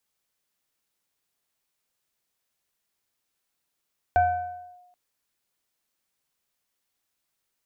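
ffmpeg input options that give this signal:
ffmpeg -f lavfi -i "aevalsrc='0.188*pow(10,-3*t/1.07)*sin(2*PI*719*t+0.51*clip(1-t/0.64,0,1)*sin(2*PI*1.12*719*t))':duration=0.78:sample_rate=44100" out.wav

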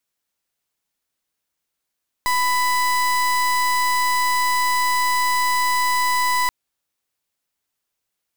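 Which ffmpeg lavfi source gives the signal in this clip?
ffmpeg -f lavfi -i "aevalsrc='0.112*(2*lt(mod(995*t,1),0.31)-1)':duration=4.23:sample_rate=44100" out.wav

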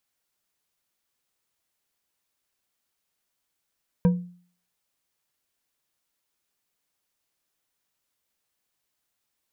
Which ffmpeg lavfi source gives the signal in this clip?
ffmpeg -f lavfi -i "aevalsrc='0.224*pow(10,-3*t/0.48)*sin(2*PI*177*t)+0.0794*pow(10,-3*t/0.236)*sin(2*PI*488*t)+0.0282*pow(10,-3*t/0.147)*sin(2*PI*956.5*t)+0.01*pow(10,-3*t/0.104)*sin(2*PI*1581.1*t)+0.00355*pow(10,-3*t/0.078)*sin(2*PI*2361.2*t)':duration=0.89:sample_rate=44100" out.wav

